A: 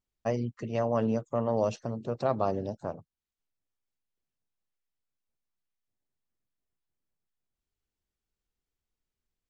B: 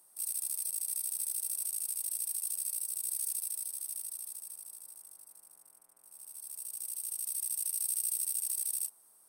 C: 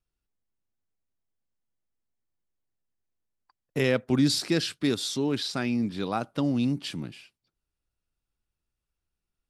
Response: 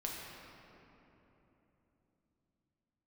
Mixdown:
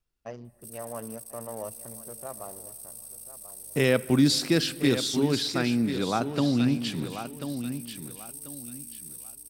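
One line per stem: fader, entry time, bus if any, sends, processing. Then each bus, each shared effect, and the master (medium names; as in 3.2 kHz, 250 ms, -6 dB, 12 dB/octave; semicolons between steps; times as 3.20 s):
-7.0 dB, 0.00 s, send -20 dB, echo send -16 dB, local Wiener filter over 41 samples; bass shelf 400 Hz -8 dB; auto duck -18 dB, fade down 1.80 s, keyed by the third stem
-9.5 dB, 0.45 s, no send, echo send -3.5 dB, hum 50 Hz, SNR 24 dB
+1.0 dB, 0.00 s, send -16.5 dB, echo send -8.5 dB, none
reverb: on, RT60 3.5 s, pre-delay 6 ms
echo: feedback delay 1039 ms, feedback 27%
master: none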